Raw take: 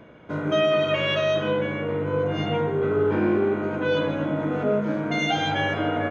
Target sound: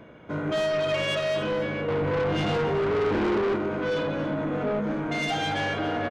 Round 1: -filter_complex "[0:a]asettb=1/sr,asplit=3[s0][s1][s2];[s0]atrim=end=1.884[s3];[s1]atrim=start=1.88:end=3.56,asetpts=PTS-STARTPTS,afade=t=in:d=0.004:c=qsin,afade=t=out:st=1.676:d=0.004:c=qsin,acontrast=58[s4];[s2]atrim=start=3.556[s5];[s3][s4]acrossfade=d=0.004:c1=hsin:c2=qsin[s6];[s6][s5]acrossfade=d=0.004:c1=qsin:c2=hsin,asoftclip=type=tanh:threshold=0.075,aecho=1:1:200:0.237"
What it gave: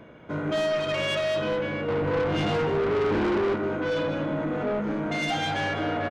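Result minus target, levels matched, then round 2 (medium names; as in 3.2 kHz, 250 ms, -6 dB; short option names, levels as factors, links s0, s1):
echo 80 ms early
-filter_complex "[0:a]asettb=1/sr,asplit=3[s0][s1][s2];[s0]atrim=end=1.884[s3];[s1]atrim=start=1.88:end=3.56,asetpts=PTS-STARTPTS,afade=t=in:d=0.004:c=qsin,afade=t=out:st=1.676:d=0.004:c=qsin,acontrast=58[s4];[s2]atrim=start=3.556[s5];[s3][s4]acrossfade=d=0.004:c1=hsin:c2=qsin[s6];[s6][s5]acrossfade=d=0.004:c1=qsin:c2=hsin,asoftclip=type=tanh:threshold=0.075,aecho=1:1:280:0.237"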